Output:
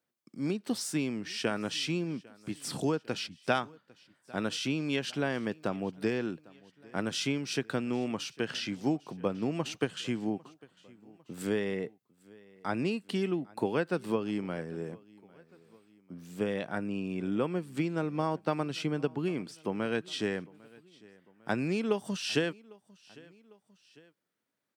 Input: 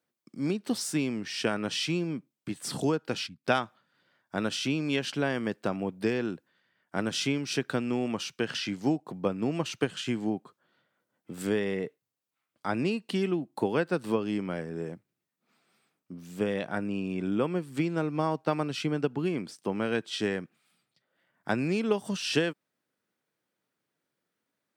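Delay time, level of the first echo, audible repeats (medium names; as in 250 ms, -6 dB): 801 ms, -24.0 dB, 2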